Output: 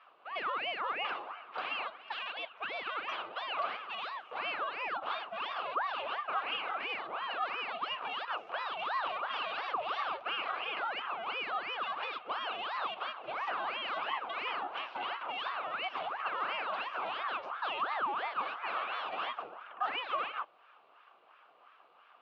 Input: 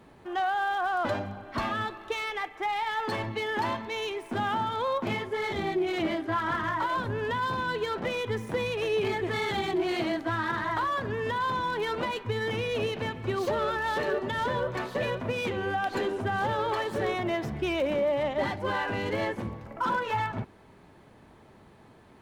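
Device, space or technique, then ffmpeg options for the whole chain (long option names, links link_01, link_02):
voice changer toy: -af "aeval=exprs='val(0)*sin(2*PI*870*n/s+870*0.75/2.9*sin(2*PI*2.9*n/s))':channel_layout=same,highpass=580,equalizer=frequency=740:width_type=q:width=4:gain=4,equalizer=frequency=1200:width_type=q:width=4:gain=8,equalizer=frequency=1900:width_type=q:width=4:gain=-7,equalizer=frequency=2800:width_type=q:width=4:gain=8,lowpass=frequency=3900:width=0.5412,lowpass=frequency=3900:width=1.3066,volume=-5.5dB"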